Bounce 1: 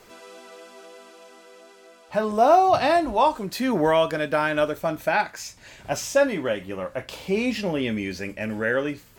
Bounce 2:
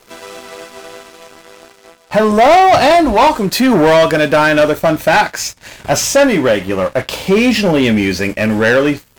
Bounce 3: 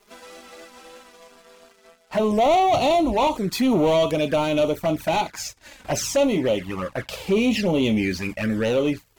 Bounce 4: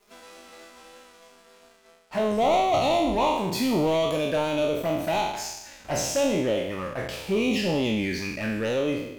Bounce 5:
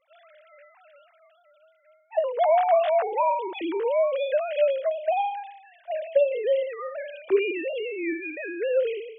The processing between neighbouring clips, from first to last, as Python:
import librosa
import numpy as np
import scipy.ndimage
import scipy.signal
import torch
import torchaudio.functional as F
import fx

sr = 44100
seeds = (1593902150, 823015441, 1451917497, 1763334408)

y1 = fx.leveller(x, sr, passes=3)
y1 = y1 * librosa.db_to_amplitude(4.5)
y2 = fx.env_flanger(y1, sr, rest_ms=5.0, full_db=-8.5)
y2 = y2 * librosa.db_to_amplitude(-8.0)
y3 = fx.spec_trails(y2, sr, decay_s=0.95)
y3 = y3 * librosa.db_to_amplitude(-6.0)
y4 = fx.sine_speech(y3, sr)